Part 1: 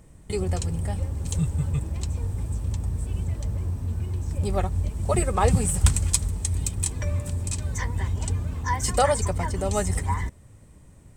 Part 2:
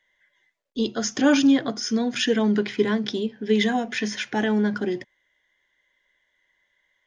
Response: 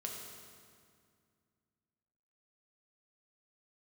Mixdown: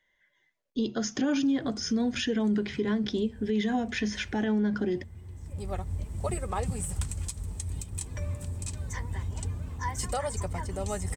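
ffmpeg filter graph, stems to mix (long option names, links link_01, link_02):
-filter_complex "[0:a]alimiter=limit=-13.5dB:level=0:latency=1:release=196,adelay=1150,volume=-7dB[link_01];[1:a]lowshelf=frequency=320:gain=8.5,volume=-4.5dB,asplit=2[link_02][link_03];[link_03]apad=whole_len=542941[link_04];[link_01][link_04]sidechaincompress=threshold=-33dB:ratio=8:attack=16:release=1120[link_05];[link_05][link_02]amix=inputs=2:normalize=0,alimiter=limit=-20dB:level=0:latency=1:release=124"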